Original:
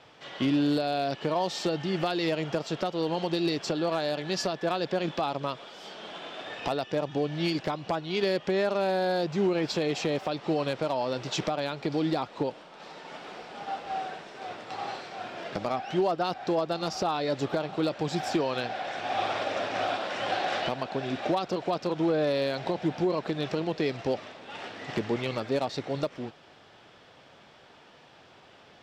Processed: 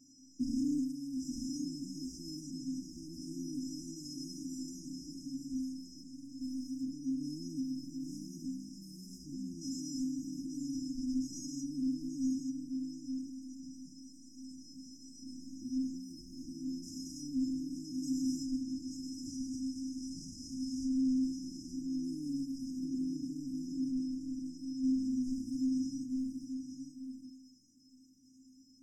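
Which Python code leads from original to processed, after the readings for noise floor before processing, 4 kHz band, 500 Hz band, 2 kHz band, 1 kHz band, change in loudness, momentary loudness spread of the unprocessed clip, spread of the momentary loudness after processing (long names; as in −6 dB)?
−55 dBFS, −15.0 dB, below −30 dB, below −40 dB, below −40 dB, −9.0 dB, 12 LU, 14 LU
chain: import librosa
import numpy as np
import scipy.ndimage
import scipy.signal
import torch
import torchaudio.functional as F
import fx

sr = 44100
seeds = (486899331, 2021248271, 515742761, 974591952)

p1 = fx.spec_steps(x, sr, hold_ms=400)
p2 = fx.stiff_resonator(p1, sr, f0_hz=260.0, decay_s=0.7, stiffness=0.008)
p3 = fx.fold_sine(p2, sr, drive_db=14, ceiling_db=-30.0)
p4 = fx.brickwall_bandstop(p3, sr, low_hz=340.0, high_hz=4900.0)
p5 = p4 + fx.echo_single(p4, sr, ms=882, db=-6.5, dry=0)
y = F.gain(torch.from_numpy(p5), 2.5).numpy()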